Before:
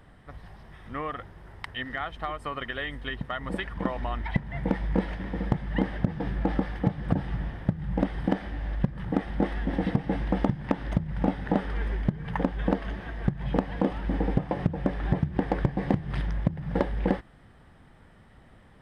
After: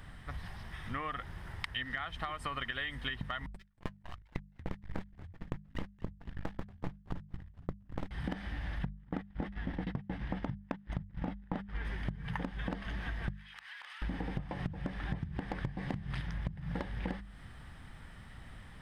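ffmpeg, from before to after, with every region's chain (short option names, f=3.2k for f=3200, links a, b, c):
-filter_complex "[0:a]asettb=1/sr,asplit=3[a][b][c];[a]atrim=end=3.464[d];[b]atrim=start=3.46:end=8.11,asetpts=PTS-STARTPTS,afade=t=in:d=0.004:c=qsin,afade=t=out:st=4.646:d=0.004:c=qsin,agate=range=-46dB:threshold=-27dB:ratio=16:release=100:detection=peak,aeval=exprs='max(val(0),0)':c=same,asplit=4[e][f][g][h];[f]adelay=233,afreqshift=-87,volume=-21dB[i];[g]adelay=466,afreqshift=-174,volume=-29.6dB[j];[h]adelay=699,afreqshift=-261,volume=-38.3dB[k];[e][i][j][k]amix=inputs=4:normalize=0,atrim=end_sample=205065[l];[c]atrim=start=8.106[m];[d][l]acrossfade=d=0.004:c1=hsin:c2=qsin[n];[n][m]acrossfade=d=0.004:c1=qsin:c2=hsin,asettb=1/sr,asplit=3[o][p][q];[o]atrim=end=8.844[r];[p]atrim=start=8.84:end=11.85,asetpts=PTS-STARTPTS,afade=t=in:d=0.004:c=qsin,afade=t=out:st=3.006:d=0.004:c=qsin,lowpass=f=3.2k:p=1,agate=range=-32dB:threshold=-30dB:ratio=16:release=100:detection=peak[s];[q]atrim=start=11.846[t];[r][s]acrossfade=d=0.004:c1=hsin:c2=qsin[u];[u][t]acrossfade=d=0.004:c1=qsin:c2=hsin,asettb=1/sr,asplit=3[v][w][x];[v]atrim=end=13.304[y];[w]atrim=start=13.3:end=14.02,asetpts=PTS-STARTPTS,afade=t=in:d=0.004:c=qsin,afade=t=out:st=0.716:d=0.004:c=qsin,highpass=f=1.3k:w=0.5412,highpass=f=1.3k:w=1.3066,acompressor=threshold=-50dB:ratio=6:attack=3.2:release=140:knee=1:detection=peak[z];[x]atrim=start=14.016[aa];[y][z]acrossfade=d=0.004:c1=hsin:c2=qsin[ab];[ab][aa]acrossfade=d=0.004:c1=qsin:c2=hsin,equalizer=f=450:t=o:w=2.3:g=-12,bandreject=f=50:t=h:w=6,bandreject=f=100:t=h:w=6,bandreject=f=150:t=h:w=6,bandreject=f=200:t=h:w=6,acompressor=threshold=-42dB:ratio=6,volume=7.5dB"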